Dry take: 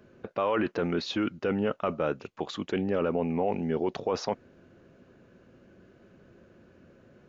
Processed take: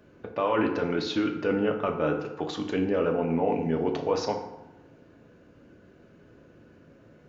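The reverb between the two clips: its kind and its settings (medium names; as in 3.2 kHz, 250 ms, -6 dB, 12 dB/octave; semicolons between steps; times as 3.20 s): FDN reverb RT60 0.96 s, low-frequency decay 1×, high-frequency decay 0.6×, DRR 2.5 dB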